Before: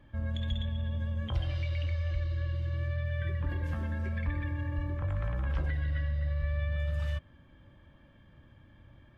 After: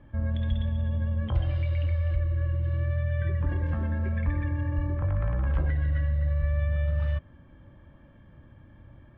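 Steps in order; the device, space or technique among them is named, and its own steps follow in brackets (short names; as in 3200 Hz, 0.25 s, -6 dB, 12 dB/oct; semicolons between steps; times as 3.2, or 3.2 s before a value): phone in a pocket (LPF 3700 Hz 12 dB/oct; high shelf 2400 Hz -12 dB); 2.16–2.64 LPF 2800 Hz 12 dB/oct; gain +5.5 dB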